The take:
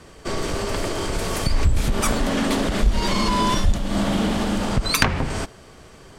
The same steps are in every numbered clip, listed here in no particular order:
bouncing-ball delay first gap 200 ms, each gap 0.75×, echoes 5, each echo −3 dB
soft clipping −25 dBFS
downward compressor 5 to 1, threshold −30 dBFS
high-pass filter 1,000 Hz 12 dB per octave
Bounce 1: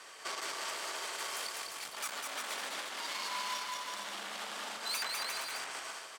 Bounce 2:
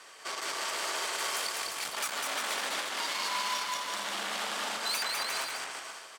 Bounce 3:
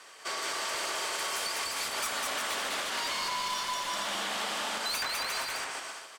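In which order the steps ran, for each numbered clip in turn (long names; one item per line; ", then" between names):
soft clipping, then bouncing-ball delay, then downward compressor, then high-pass filter
soft clipping, then high-pass filter, then downward compressor, then bouncing-ball delay
high-pass filter, then soft clipping, then bouncing-ball delay, then downward compressor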